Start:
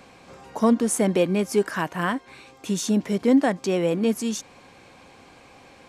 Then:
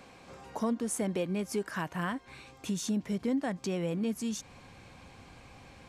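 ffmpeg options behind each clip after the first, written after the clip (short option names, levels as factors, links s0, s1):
-af "asubboost=boost=3.5:cutoff=180,acompressor=threshold=0.0316:ratio=2,volume=0.631"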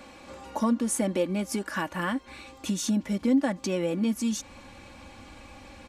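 -af "aecho=1:1:3.5:0.69,volume=1.58"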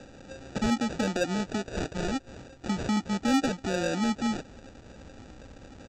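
-af "aresample=16000,acrusher=samples=15:mix=1:aa=0.000001,aresample=44100,asoftclip=type=tanh:threshold=0.133"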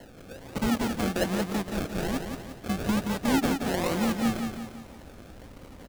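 -af "acrusher=samples=36:mix=1:aa=0.000001:lfo=1:lforange=21.6:lforate=1.2,aecho=1:1:175|350|525|700|875|1050:0.501|0.236|0.111|0.052|0.0245|0.0115"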